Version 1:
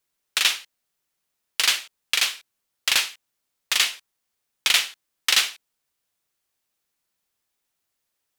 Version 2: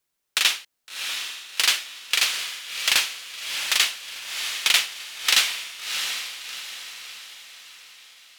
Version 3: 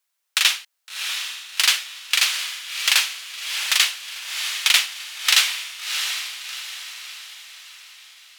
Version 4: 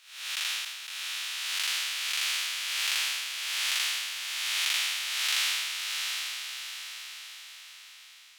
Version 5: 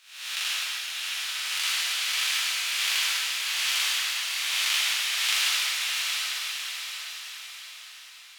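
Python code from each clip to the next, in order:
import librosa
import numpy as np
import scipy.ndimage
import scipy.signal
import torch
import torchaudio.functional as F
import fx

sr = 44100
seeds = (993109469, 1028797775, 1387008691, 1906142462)

y1 = fx.echo_diffused(x, sr, ms=693, feedback_pct=46, wet_db=-6.5)
y2 = scipy.signal.sosfilt(scipy.signal.butter(2, 800.0, 'highpass', fs=sr, output='sos'), y1)
y2 = y2 * 10.0 ** (2.5 / 20.0)
y3 = fx.spec_blur(y2, sr, span_ms=379.0)
y3 = y3 * 10.0 ** (-3.5 / 20.0)
y4 = fx.rev_plate(y3, sr, seeds[0], rt60_s=3.3, hf_ratio=0.9, predelay_ms=0, drr_db=-1.5)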